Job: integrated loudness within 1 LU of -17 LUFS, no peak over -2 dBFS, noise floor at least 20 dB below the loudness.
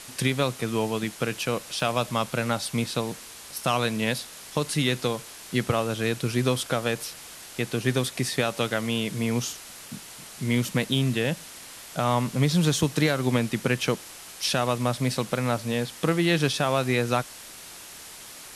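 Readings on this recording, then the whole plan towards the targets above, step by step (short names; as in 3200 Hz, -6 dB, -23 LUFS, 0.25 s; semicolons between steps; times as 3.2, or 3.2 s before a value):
dropouts 1; longest dropout 1.3 ms; noise floor -44 dBFS; noise floor target -47 dBFS; loudness -26.5 LUFS; peak -10.0 dBFS; loudness target -17.0 LUFS
-> interpolate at 1.8, 1.3 ms; denoiser 6 dB, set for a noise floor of -44 dBFS; gain +9.5 dB; limiter -2 dBFS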